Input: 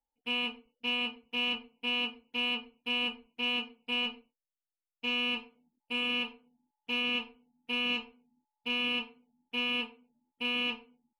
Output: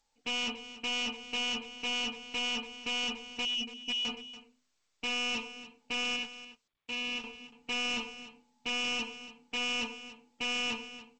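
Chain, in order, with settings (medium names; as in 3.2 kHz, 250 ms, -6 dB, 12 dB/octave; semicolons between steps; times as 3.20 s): 3.45–4.05 s: spectral contrast enhancement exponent 2.4; hum notches 50/100/150/200/250/300/350 Hz; in parallel at 0 dB: compression 10:1, threshold -47 dBFS, peak gain reduction 18.5 dB; 6.16–7.24 s: on the sum: power-law waveshaper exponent 2; hard clipper -37 dBFS, distortion -6 dB; on a send: delay 285 ms -14.5 dB; on the sum: trim +5.5 dB; G.722 64 kbps 16 kHz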